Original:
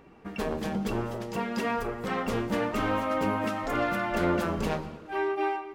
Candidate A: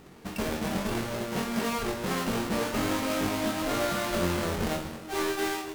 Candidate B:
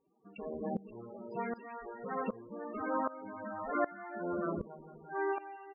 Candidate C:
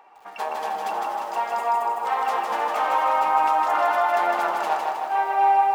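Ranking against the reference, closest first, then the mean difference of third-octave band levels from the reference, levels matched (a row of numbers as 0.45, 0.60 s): A, C, B; 8.0, 10.5, 15.0 dB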